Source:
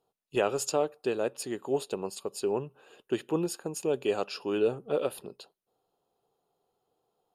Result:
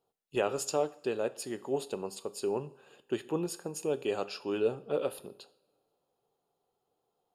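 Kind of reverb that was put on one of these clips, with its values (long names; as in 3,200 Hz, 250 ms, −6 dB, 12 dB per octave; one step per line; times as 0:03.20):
coupled-rooms reverb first 0.52 s, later 2.2 s, from −22 dB, DRR 13 dB
level −3 dB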